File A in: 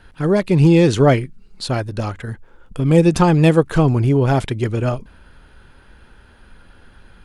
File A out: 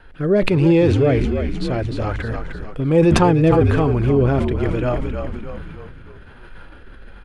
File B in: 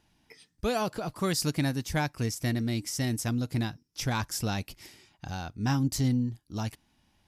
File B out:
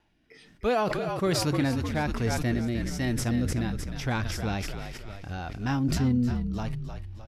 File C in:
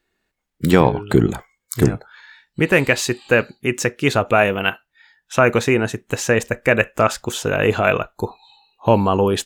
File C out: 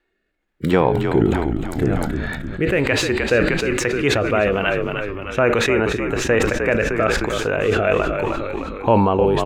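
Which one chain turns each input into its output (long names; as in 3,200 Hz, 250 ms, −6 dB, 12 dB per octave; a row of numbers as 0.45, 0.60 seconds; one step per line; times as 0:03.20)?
bass and treble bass −11 dB, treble −13 dB
rotating-speaker cabinet horn 1.2 Hz
on a send: echo with shifted repeats 306 ms, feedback 49%, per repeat −51 Hz, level −9 dB
on the sum: harmonic and percussive parts rebalanced harmonic +5 dB
in parallel at +1 dB: downward compressor, threshold −25 dBFS
on the sum: low-shelf EQ 100 Hz +10 dB
level that may fall only so fast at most 27 dB per second
level −4 dB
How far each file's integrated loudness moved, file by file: −1.5, +2.0, −1.0 LU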